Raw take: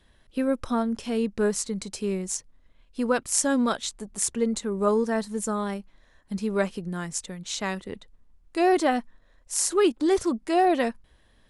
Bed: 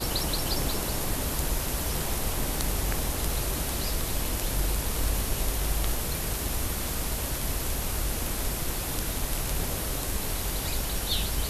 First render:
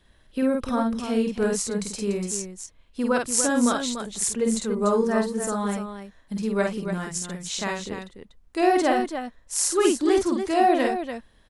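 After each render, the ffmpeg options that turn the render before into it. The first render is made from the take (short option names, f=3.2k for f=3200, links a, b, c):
-af "aecho=1:1:49.56|291.5:0.708|0.398"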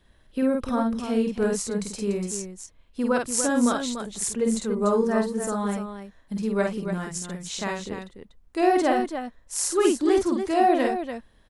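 -af "lowpass=f=1.4k:p=1,aemphasis=mode=production:type=75kf"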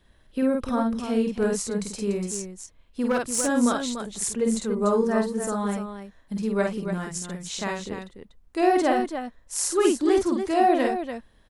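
-filter_complex "[0:a]asettb=1/sr,asplit=3[a][b][c];[a]atrim=end=2.244[d];[b]atrim=start=2.24:end=3.48,asetpts=PTS-STARTPTS,afade=t=in:d=0.004:c=qsin,afade=t=out:st=1.236:d=0.004:c=qsin,asoftclip=type=hard:threshold=-17.5dB[e];[c]atrim=start=3.476[f];[d][e]acrossfade=d=0.004:c1=hsin:c2=qsin[g];[g][f]acrossfade=d=0.004:c1=qsin:c2=hsin"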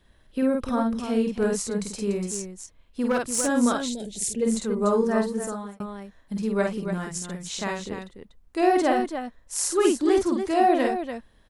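-filter_complex "[0:a]asplit=3[a][b][c];[a]afade=t=out:st=3.88:d=0.02[d];[b]asuperstop=centerf=1200:order=4:qfactor=0.72,afade=t=in:st=3.88:d=0.02,afade=t=out:st=4.41:d=0.02[e];[c]afade=t=in:st=4.41:d=0.02[f];[d][e][f]amix=inputs=3:normalize=0,asplit=2[g][h];[g]atrim=end=5.8,asetpts=PTS-STARTPTS,afade=t=out:st=5.35:d=0.45[i];[h]atrim=start=5.8,asetpts=PTS-STARTPTS,afade=t=in:d=0.004:c=hsin[j];[i][j]concat=n=2:v=0:a=1"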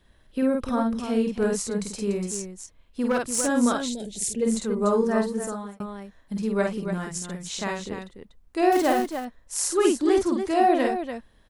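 -filter_complex "[0:a]asettb=1/sr,asplit=3[a][b][c];[a]atrim=end=8.724[d];[b]atrim=start=8.72:end=9.25,asetpts=PTS-STARTPTS,afade=t=in:d=0.004:c=qsin,afade=t=out:st=0.526:d=0.004:c=qsin,acrusher=bits=4:mode=log:mix=0:aa=0.000001[e];[c]atrim=start=9.246[f];[d][e]acrossfade=d=0.004:c1=hsin:c2=qsin[g];[g][f]acrossfade=d=0.004:c1=qsin:c2=hsin"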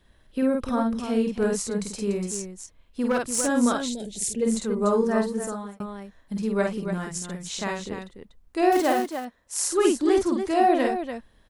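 -filter_complex "[0:a]asettb=1/sr,asplit=3[a][b][c];[a]atrim=end=8.804[d];[b]atrim=start=8.8:end=9.72,asetpts=PTS-STARTPTS,afade=t=in:d=0.004:c=qsin,afade=t=out:st=0.916:d=0.004:c=qsin,highpass=f=170:p=1[e];[c]atrim=start=9.716[f];[d][e]acrossfade=d=0.004:c1=hsin:c2=qsin[g];[g][f]acrossfade=d=0.004:c1=qsin:c2=hsin"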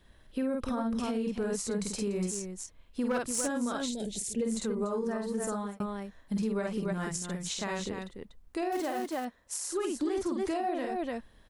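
-af "acompressor=threshold=-24dB:ratio=6,alimiter=limit=-23.5dB:level=0:latency=1:release=141"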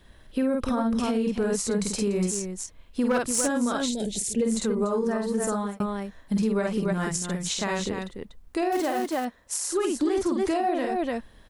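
-af "volume=6.5dB"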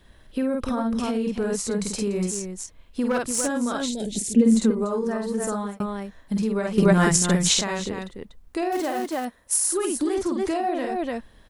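-filter_complex "[0:a]asettb=1/sr,asplit=3[a][b][c];[a]atrim=end=4.124[d];[b]atrim=start=4.12:end=4.71,asetpts=PTS-STARTPTS,afade=t=in:d=0.004:c=qsin,afade=t=out:st=0.586:d=0.004:c=qsin,equalizer=f=250:w=1.6:g=11[e];[c]atrim=start=4.706[f];[d][e]acrossfade=d=0.004:c1=hsin:c2=qsin[g];[g][f]acrossfade=d=0.004:c1=qsin:c2=hsin,asettb=1/sr,asplit=3[h][i][j];[h]atrim=end=9.244[k];[i]atrim=start=9.24:end=10.15,asetpts=PTS-STARTPTS,afade=t=in:d=0.004:c=qsin,afade=t=out:st=0.906:d=0.004:c=qsin,equalizer=f=10k:w=2.8:g=13[l];[j]atrim=start=10.146[m];[k][l]acrossfade=d=0.004:c1=hsin:c2=qsin[n];[n][m]acrossfade=d=0.004:c1=qsin:c2=hsin,asplit=3[o][p][q];[o]atrim=end=6.782[r];[p]atrim=start=6.778:end=7.612,asetpts=PTS-STARTPTS,volume=9.5dB[s];[q]atrim=start=7.608[t];[r][s]acrossfade=d=0.004:c1=hsin:c2=hsin[u];[u][t]acrossfade=d=0.004:c1=hsin:c2=hsin"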